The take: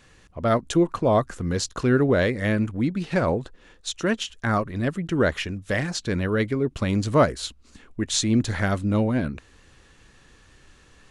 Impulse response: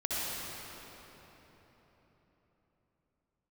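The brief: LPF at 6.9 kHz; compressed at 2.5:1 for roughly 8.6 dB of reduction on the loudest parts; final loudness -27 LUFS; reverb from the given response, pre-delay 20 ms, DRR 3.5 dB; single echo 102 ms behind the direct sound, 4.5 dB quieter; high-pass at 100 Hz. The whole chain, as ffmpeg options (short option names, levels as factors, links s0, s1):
-filter_complex "[0:a]highpass=100,lowpass=6900,acompressor=threshold=0.0447:ratio=2.5,aecho=1:1:102:0.596,asplit=2[s0][s1];[1:a]atrim=start_sample=2205,adelay=20[s2];[s1][s2]afir=irnorm=-1:irlink=0,volume=0.282[s3];[s0][s3]amix=inputs=2:normalize=0,volume=1.06"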